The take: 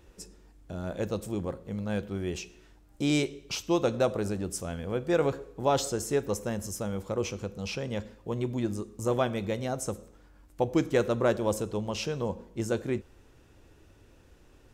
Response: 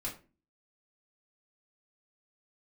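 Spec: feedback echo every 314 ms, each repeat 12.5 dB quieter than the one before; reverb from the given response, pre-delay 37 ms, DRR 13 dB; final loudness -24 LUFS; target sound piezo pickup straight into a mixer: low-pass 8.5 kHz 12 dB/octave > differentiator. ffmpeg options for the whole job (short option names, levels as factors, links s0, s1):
-filter_complex "[0:a]aecho=1:1:314|628|942:0.237|0.0569|0.0137,asplit=2[s0][s1];[1:a]atrim=start_sample=2205,adelay=37[s2];[s1][s2]afir=irnorm=-1:irlink=0,volume=0.2[s3];[s0][s3]amix=inputs=2:normalize=0,lowpass=8500,aderivative,volume=10.6"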